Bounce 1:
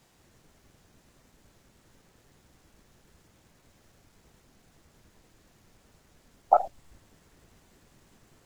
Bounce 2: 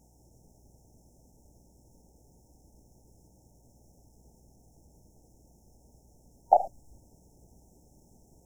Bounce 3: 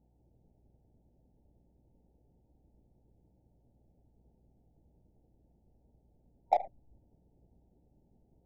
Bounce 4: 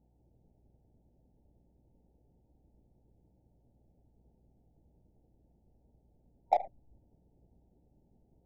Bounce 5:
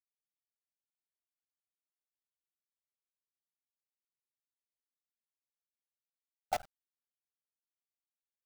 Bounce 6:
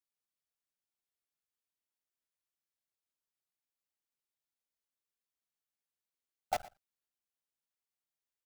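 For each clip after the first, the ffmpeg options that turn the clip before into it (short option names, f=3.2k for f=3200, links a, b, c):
-af "afftfilt=real='re*(1-between(b*sr/4096,930,5200))':imag='im*(1-between(b*sr/4096,930,5200))':win_size=4096:overlap=0.75,aeval=exprs='val(0)+0.000794*(sin(2*PI*60*n/s)+sin(2*PI*2*60*n/s)/2+sin(2*PI*3*60*n/s)/3+sin(2*PI*4*60*n/s)/4+sin(2*PI*5*60*n/s)/5)':c=same"
-af "adynamicsmooth=sensitivity=1.5:basefreq=1k,volume=-7dB"
-af anull
-af "acrusher=bits=5:dc=4:mix=0:aa=0.000001,volume=-8dB"
-af "aecho=1:1:117:0.106"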